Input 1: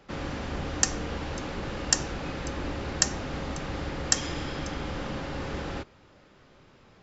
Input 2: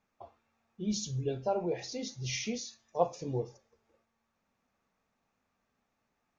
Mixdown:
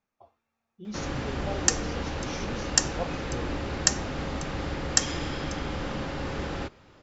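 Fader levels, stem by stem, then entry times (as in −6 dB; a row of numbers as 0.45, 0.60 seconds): +1.5, −5.5 decibels; 0.85, 0.00 seconds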